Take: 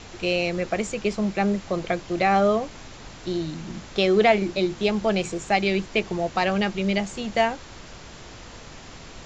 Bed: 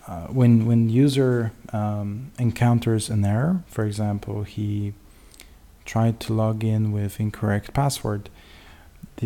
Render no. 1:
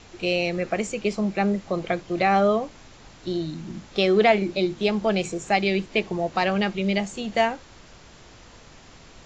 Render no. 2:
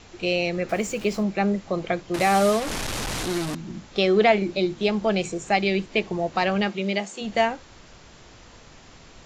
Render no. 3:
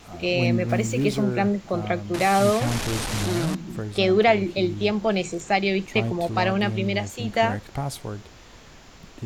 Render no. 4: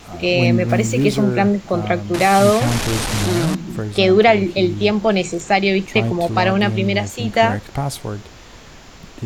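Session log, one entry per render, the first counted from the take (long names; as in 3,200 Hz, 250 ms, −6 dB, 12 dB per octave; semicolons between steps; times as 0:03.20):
noise reduction from a noise print 6 dB
0:00.69–0:01.23: converter with a step at zero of −38.5 dBFS; 0:02.14–0:03.55: linear delta modulator 64 kbit/s, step −22.5 dBFS; 0:06.68–0:07.20: high-pass filter 140 Hz → 370 Hz
mix in bed −7.5 dB
level +6.5 dB; brickwall limiter −2 dBFS, peak gain reduction 2 dB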